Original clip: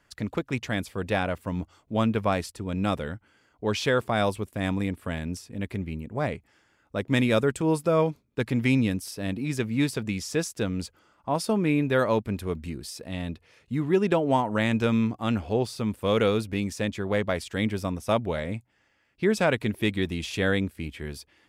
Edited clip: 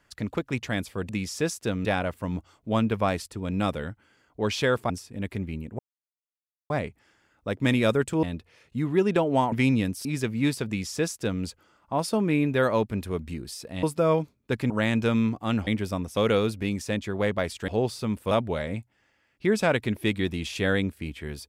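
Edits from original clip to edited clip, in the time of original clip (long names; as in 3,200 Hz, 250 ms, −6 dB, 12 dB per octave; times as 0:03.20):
0:04.14–0:05.29: remove
0:06.18: splice in silence 0.91 s
0:07.71–0:08.58: swap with 0:13.19–0:14.48
0:09.11–0:09.41: remove
0:10.03–0:10.79: duplicate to 0:01.09
0:15.45–0:16.08: swap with 0:17.59–0:18.09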